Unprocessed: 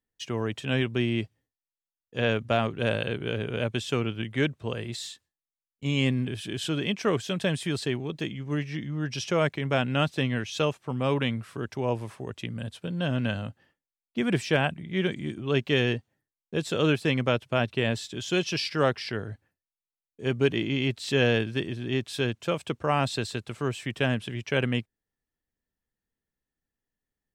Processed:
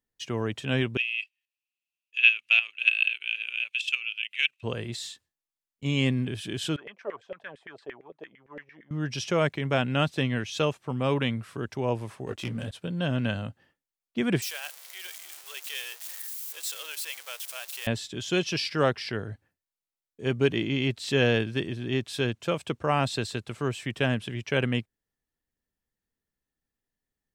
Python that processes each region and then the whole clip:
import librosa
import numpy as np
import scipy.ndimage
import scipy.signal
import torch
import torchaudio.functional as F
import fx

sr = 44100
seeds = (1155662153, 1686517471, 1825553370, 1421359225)

y = fx.chain(x, sr, fx.level_steps(step_db=12),
    fx.highpass_res(hz=2600.0, q=12.0), at=(0.97, 4.63))
y = fx.chain(y, sr, fx.peak_eq(hz=430.0, db=2.5, octaves=2.0),
    fx.filter_lfo_bandpass(shape='saw_down', hz=8.8, low_hz=460.0, high_hz=2100.0, q=5.8), at=(6.76, 8.91))
y = fx.chain(y, sr, fx.highpass(hz=96.0, slope=6),
    fx.leveller(passes=2),
    fx.detune_double(cents=37), at=(12.26, 12.71))
y = fx.chain(y, sr, fx.zero_step(step_db=-28.5),
    fx.highpass(hz=490.0, slope=24),
    fx.differentiator(), at=(14.42, 17.87))